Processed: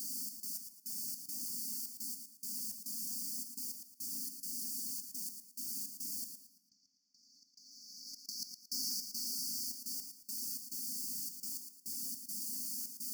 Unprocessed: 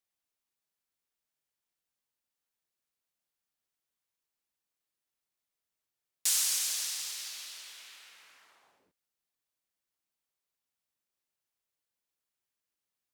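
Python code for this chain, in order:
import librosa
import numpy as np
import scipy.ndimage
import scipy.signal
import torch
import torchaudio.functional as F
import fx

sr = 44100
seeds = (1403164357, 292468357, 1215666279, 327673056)

p1 = fx.cvsd(x, sr, bps=32000)
p2 = fx.high_shelf(p1, sr, hz=3000.0, db=7.5)
p3 = fx.echo_wet_highpass(p2, sr, ms=172, feedback_pct=85, hz=1900.0, wet_db=-13.5)
p4 = fx.quant_dither(p3, sr, seeds[0], bits=8, dither='triangular')
p5 = p3 + (p4 * librosa.db_to_amplitude(-7.0))
p6 = scipy.signal.sosfilt(scipy.signal.butter(4, 220.0, 'highpass', fs=sr, output='sos'), p5)
p7 = p6 + 0.37 * np.pad(p6, (int(4.5 * sr / 1000.0), 0))[:len(p6)]
p8 = fx.step_gate(p7, sr, bpm=105, pattern='xx.x..xx.xx', floor_db=-60.0, edge_ms=4.5)
p9 = fx.over_compress(p8, sr, threshold_db=-49.0, ratio=-0.5)
p10 = fx.brickwall_bandstop(p9, sr, low_hz=300.0, high_hz=4400.0)
p11 = fx.low_shelf(p10, sr, hz=440.0, db=7.5)
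p12 = p11 + fx.echo_feedback(p11, sr, ms=113, feedback_pct=33, wet_db=-7.5, dry=0)
y = p12 * librosa.db_to_amplitude(8.0)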